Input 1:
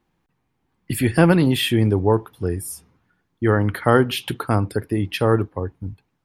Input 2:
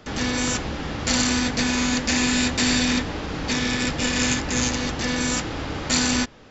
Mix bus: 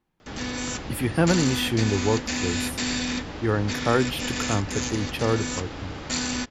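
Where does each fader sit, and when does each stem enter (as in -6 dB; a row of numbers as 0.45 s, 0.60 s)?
-6.0 dB, -6.5 dB; 0.00 s, 0.20 s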